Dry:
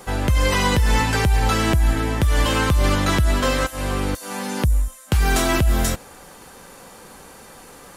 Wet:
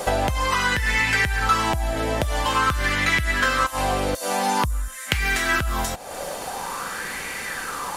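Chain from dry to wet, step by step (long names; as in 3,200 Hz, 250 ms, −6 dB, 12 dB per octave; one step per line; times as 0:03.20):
high-shelf EQ 2,300 Hz +11.5 dB
downward compressor 10 to 1, threshold −27 dBFS, peak gain reduction 17 dB
high-shelf EQ 6,100 Hz −8 dB
auto-filter bell 0.48 Hz 600–2,100 Hz +15 dB
level +5 dB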